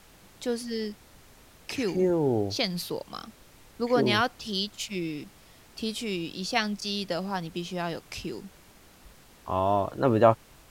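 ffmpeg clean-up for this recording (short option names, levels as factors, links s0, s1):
-af "adeclick=t=4,afftdn=nr=18:nf=-55"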